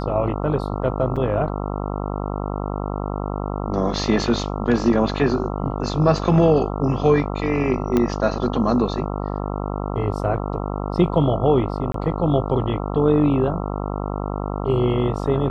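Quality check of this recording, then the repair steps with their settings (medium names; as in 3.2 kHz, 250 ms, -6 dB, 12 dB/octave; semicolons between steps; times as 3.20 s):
buzz 50 Hz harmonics 27 -26 dBFS
1.16–1.17 s: dropout 5.5 ms
7.97 s: pop -8 dBFS
11.92–11.94 s: dropout 23 ms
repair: de-click; de-hum 50 Hz, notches 27; interpolate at 1.16 s, 5.5 ms; interpolate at 11.92 s, 23 ms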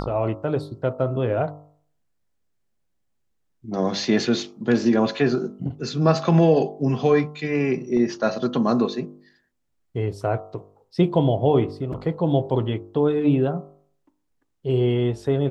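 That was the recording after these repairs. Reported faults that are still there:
7.97 s: pop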